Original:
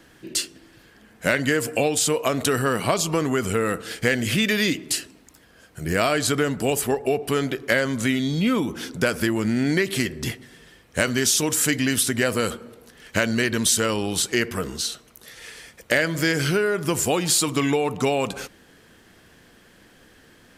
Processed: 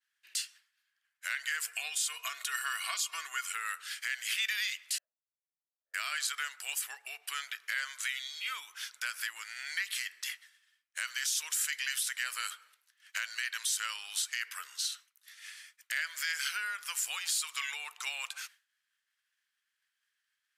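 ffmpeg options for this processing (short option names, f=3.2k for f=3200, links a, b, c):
-filter_complex "[0:a]asettb=1/sr,asplit=3[a][b][c];[a]atrim=end=1.744[d];[b]atrim=start=1.74:end=3.52,asetpts=PTS-STARTPTS,afade=t=in:d=0.004:c=qsin,afade=t=out:st=1.776:d=0.004:c=qsin,aecho=1:1:2.8:0.65,atrim=end_sample=78498[e];[c]atrim=start=3.516[f];[d][e]acrossfade=d=0.004:c1=hsin:c2=qsin[g];[g][f]acrossfade=d=0.004:c1=qsin:c2=hsin,asettb=1/sr,asplit=3[h][i][j];[h]atrim=end=4.984[k];[i]atrim=start=4.98:end=5.94,asetpts=PTS-STARTPTS,afade=t=in:d=0.004:c=qsin,afade=t=out:st=0.956:d=0.004:c=qsin,asuperpass=centerf=570:order=4:qfactor=4.3[l];[j]atrim=start=5.936[m];[k][l]acrossfade=d=0.004:c1=hsin:c2=qsin[n];[n][m]acrossfade=d=0.004:c1=qsin:c2=hsin,agate=range=-33dB:threshold=-39dB:ratio=3:detection=peak,highpass=f=1.4k:w=0.5412,highpass=f=1.4k:w=1.3066,alimiter=limit=-16dB:level=0:latency=1:release=110,volume=-5.5dB"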